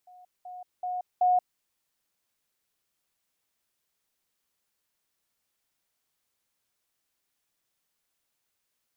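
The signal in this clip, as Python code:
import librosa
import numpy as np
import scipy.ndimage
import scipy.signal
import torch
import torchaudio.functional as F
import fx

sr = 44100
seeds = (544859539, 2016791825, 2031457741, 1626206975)

y = fx.level_ladder(sr, hz=726.0, from_db=-49.0, step_db=10.0, steps=4, dwell_s=0.18, gap_s=0.2)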